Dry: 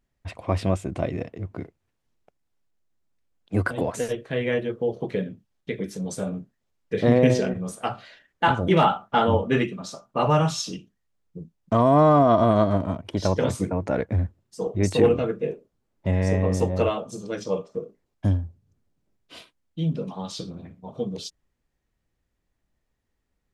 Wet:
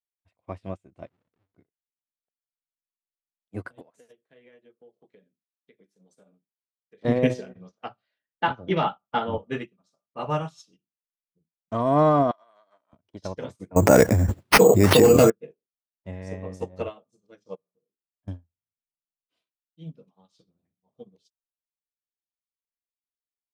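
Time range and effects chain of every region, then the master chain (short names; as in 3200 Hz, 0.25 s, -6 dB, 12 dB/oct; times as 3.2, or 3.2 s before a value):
1.07–1.56 half-waves squared off + compressor 8:1, threshold -36 dBFS + LPF 3400 Hz
3.81–7.05 HPF 200 Hz + compressor 5:1, threshold -27 dBFS
7.55–9.38 steep low-pass 5800 Hz 48 dB/oct + three-band squash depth 40%
12.31–12.93 HPF 980 Hz + compressor 12:1, threshold -27 dBFS
13.76–15.3 HPF 47 Hz 6 dB/oct + careless resampling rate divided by 6×, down none, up hold + fast leveller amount 100%
17.55–18.28 air absorption 340 m + compressor 2.5:1, threshold -40 dBFS + notches 60/120/180/240/300/360/420 Hz
whole clip: low shelf 110 Hz -5 dB; upward expander 2.5:1, over -39 dBFS; gain +3 dB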